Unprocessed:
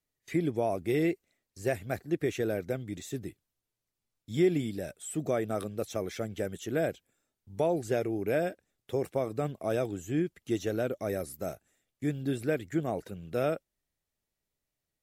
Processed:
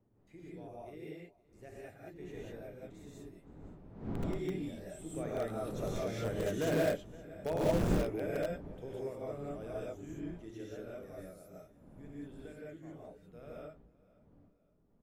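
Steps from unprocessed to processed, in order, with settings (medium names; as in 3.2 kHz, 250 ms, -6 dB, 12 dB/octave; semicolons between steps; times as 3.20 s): wind noise 270 Hz -38 dBFS; Doppler pass-by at 6.77 s, 8 m/s, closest 4.9 m; treble shelf 4.3 kHz -4 dB; on a send: feedback delay 518 ms, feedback 38%, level -21.5 dB; on the sum: gated-style reverb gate 220 ms rising, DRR -6.5 dB; in parallel at -12 dB: integer overflow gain 21 dB; on the sum: trim -7 dB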